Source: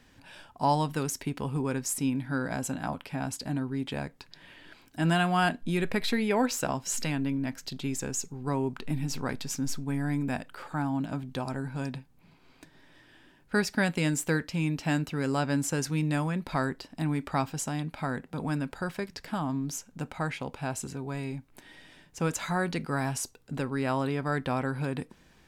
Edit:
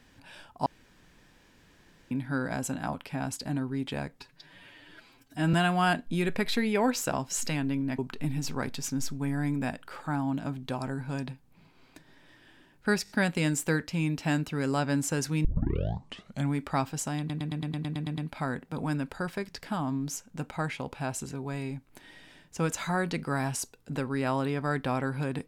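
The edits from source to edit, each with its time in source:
0.66–2.11 s: room tone
4.20–5.09 s: stretch 1.5×
7.54–8.65 s: delete
13.70 s: stutter 0.02 s, 4 plays
16.05 s: tape start 1.09 s
17.79 s: stutter 0.11 s, 10 plays

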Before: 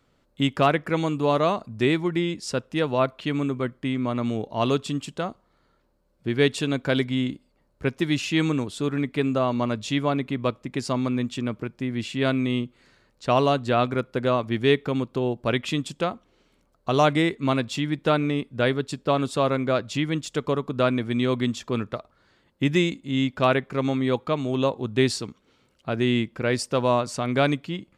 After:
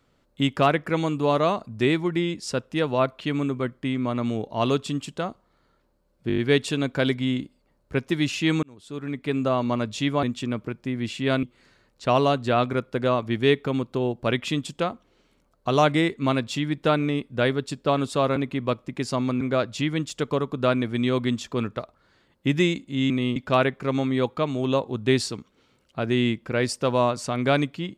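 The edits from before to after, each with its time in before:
6.28 s: stutter 0.02 s, 6 plays
8.53–9.38 s: fade in
10.13–11.18 s: move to 19.57 s
12.38–12.64 s: move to 23.26 s

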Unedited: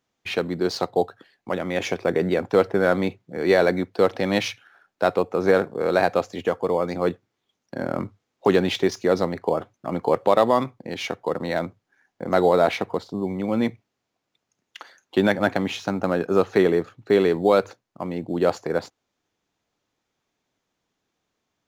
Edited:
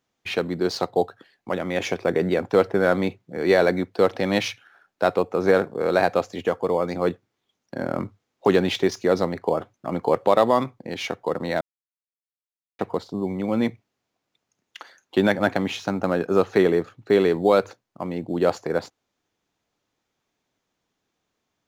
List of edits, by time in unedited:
11.61–12.79 s: mute

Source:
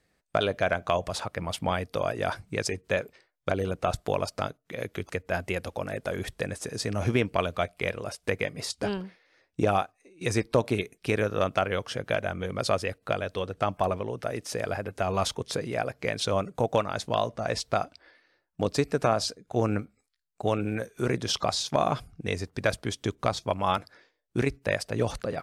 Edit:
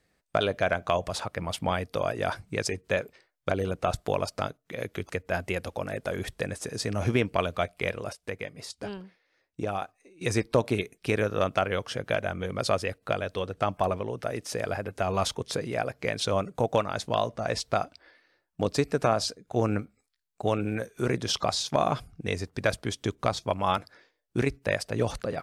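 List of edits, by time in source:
8.13–9.82 s: gain -7 dB

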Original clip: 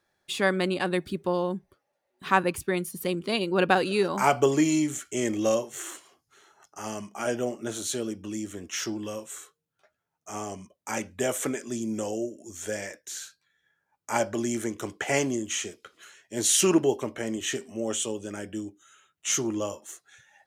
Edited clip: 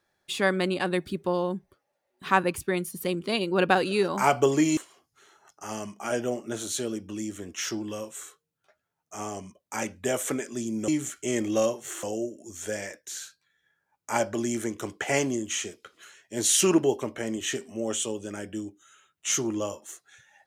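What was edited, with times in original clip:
4.77–5.92 s: move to 12.03 s

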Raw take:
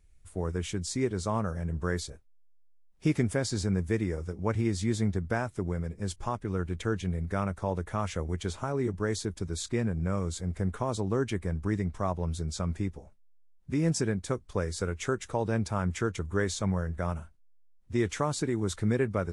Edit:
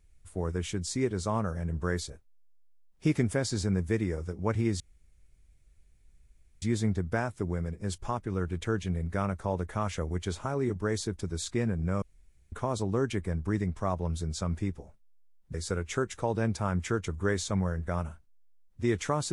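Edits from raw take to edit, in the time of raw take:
4.80 s: insert room tone 1.82 s
10.20–10.70 s: room tone
13.72–14.65 s: delete

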